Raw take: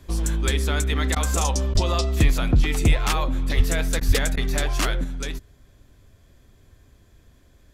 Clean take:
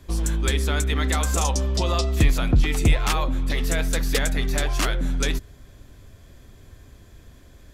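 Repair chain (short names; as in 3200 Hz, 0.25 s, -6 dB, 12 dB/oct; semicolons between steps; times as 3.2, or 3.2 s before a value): 1.73–1.85 HPF 140 Hz 24 dB/oct; 3.56–3.68 HPF 140 Hz 24 dB/oct; 4.07–4.19 HPF 140 Hz 24 dB/oct; interpolate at 1.15/1.74/4/4.36, 10 ms; gain 0 dB, from 5.04 s +6.5 dB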